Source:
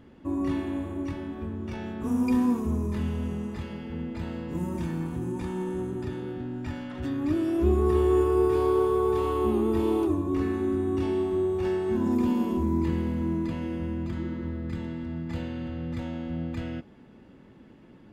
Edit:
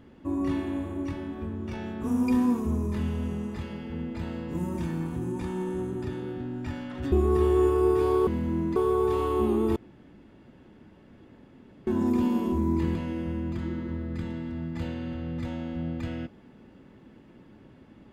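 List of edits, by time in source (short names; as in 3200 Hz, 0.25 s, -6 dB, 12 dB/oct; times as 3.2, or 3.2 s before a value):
7.12–7.66 cut
9.81–11.92 room tone
13–13.49 move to 8.81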